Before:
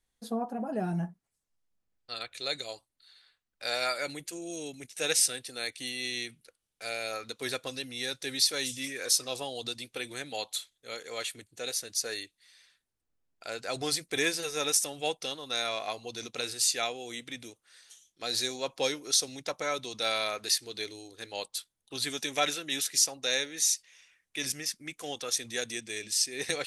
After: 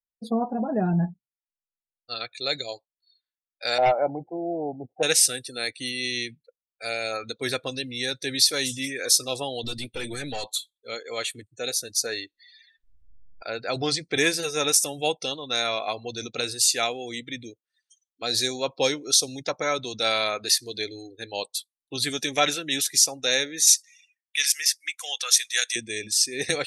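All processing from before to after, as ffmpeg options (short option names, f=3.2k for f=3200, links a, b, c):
-filter_complex "[0:a]asettb=1/sr,asplit=3[a][b][c];[a]atrim=end=3.784[d];[b]atrim=start=3.78:end=5.03,asetpts=PTS-STARTPTS,afade=t=in:d=0.004:c=qsin,afade=t=out:st=1.246:d=0.004:c=qsin,lowpass=f=770:t=q:w=6.3,aeval=exprs='0.1*(abs(mod(val(0)/0.1+3,4)-2)-1)':c=same[e];[c]atrim=start=5.026[f];[d][e]acrossfade=d=0.004:c1=hsin:c2=qsin[g];[g][f]acrossfade=d=0.004:c1=qsin:c2=hsin,asettb=1/sr,asplit=3[h][i][j];[h]atrim=end=9.634[k];[i]atrim=start=9.63:end=10.52,asetpts=PTS-STARTPTS,afade=t=in:d=0.004:c=qsin,afade=t=out:st=0.886:d=0.004:c=qsin,acontrast=83,highshelf=f=9.6k:g=3.5,aeval=exprs='(tanh(56.2*val(0)+0.35)-tanh(0.35))/56.2':c=same[l];[j]atrim=start=10.516[m];[k][l]acrossfade=d=0.004:c1=hsin:c2=qsin[n];[n][m]acrossfade=d=0.004:c1=qsin:c2=hsin,asettb=1/sr,asplit=3[o][p][q];[o]atrim=end=12.064[r];[p]atrim=start=12.06:end=14.18,asetpts=PTS-STARTPTS,afade=t=in:d=0.004:c=qsin,afade=t=out:st=2.116:d=0.004:c=qsin,lowpass=6.2k,acompressor=mode=upward:threshold=-40dB:ratio=2.5:attack=3.2:release=140:knee=2.83:detection=peak[s];[q]atrim=start=14.176[t];[r][s]acrossfade=d=0.004:c1=hsin:c2=qsin[u];[u][t]acrossfade=d=0.004:c1=qsin:c2=hsin,asettb=1/sr,asplit=3[v][w][x];[v]atrim=end=23.674[y];[w]atrim=start=23.67:end=25.76,asetpts=PTS-STARTPTS,afade=t=in:d=0.004:c=qsin,afade=t=out:st=2.086:d=0.004:c=qsin,highpass=1.4k,acontrast=38[z];[x]atrim=start=25.756[aa];[y][z]acrossfade=d=0.004:c1=hsin:c2=qsin[ab];[ab][aa]acrossfade=d=0.004:c1=qsin:c2=hsin,afftdn=nr=36:nf=-46,lowshelf=f=150:g=6.5,volume=6dB"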